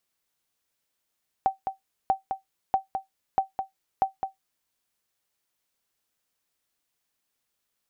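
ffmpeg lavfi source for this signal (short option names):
-f lavfi -i "aevalsrc='0.224*(sin(2*PI*772*mod(t,0.64))*exp(-6.91*mod(t,0.64)/0.14)+0.447*sin(2*PI*772*max(mod(t,0.64)-0.21,0))*exp(-6.91*max(mod(t,0.64)-0.21,0)/0.14))':d=3.2:s=44100"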